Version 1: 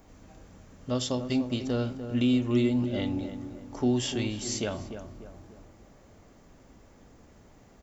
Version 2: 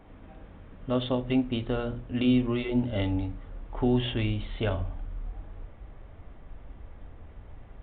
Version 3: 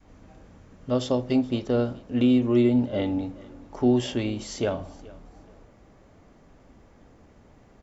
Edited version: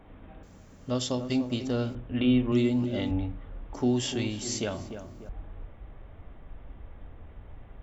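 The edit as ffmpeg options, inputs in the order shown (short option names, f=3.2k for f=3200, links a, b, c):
-filter_complex "[0:a]asplit=3[a][b][c];[1:a]asplit=4[d][e][f][g];[d]atrim=end=0.432[h];[a]atrim=start=0.428:end=1.952[i];[e]atrim=start=1.948:end=2.522[j];[b]atrim=start=2.518:end=3.112[k];[f]atrim=start=3.108:end=3.742[l];[c]atrim=start=3.738:end=5.292[m];[g]atrim=start=5.288[n];[h][i]acrossfade=d=0.004:c1=hsin:c2=hsin[o];[o][j]acrossfade=d=0.004:c1=hsin:c2=hsin[p];[p][k]acrossfade=d=0.004:c1=hsin:c2=hsin[q];[q][l]acrossfade=d=0.004:c1=hsin:c2=hsin[r];[r][m]acrossfade=d=0.004:c1=hsin:c2=hsin[s];[s][n]acrossfade=d=0.004:c1=hsin:c2=hsin"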